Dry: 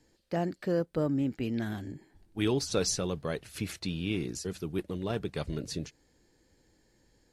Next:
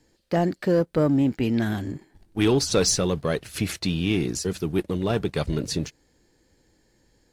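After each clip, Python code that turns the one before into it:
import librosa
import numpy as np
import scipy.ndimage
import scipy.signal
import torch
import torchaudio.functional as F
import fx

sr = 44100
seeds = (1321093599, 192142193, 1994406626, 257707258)

y = fx.leveller(x, sr, passes=1)
y = F.gain(torch.from_numpy(y), 5.5).numpy()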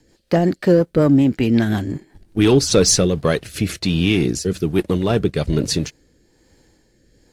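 y = fx.rotary_switch(x, sr, hz=5.5, then_hz=1.2, switch_at_s=2.49)
y = F.gain(torch.from_numpy(y), 8.5).numpy()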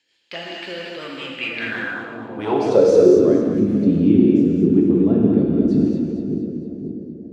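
y = fx.echo_split(x, sr, split_hz=620.0, low_ms=535, high_ms=230, feedback_pct=52, wet_db=-7.0)
y = fx.rev_gated(y, sr, seeds[0], gate_ms=270, shape='flat', drr_db=-2.5)
y = fx.filter_sweep_bandpass(y, sr, from_hz=2900.0, to_hz=260.0, start_s=1.32, end_s=3.56, q=3.2)
y = F.gain(torch.from_numpy(y), 5.0).numpy()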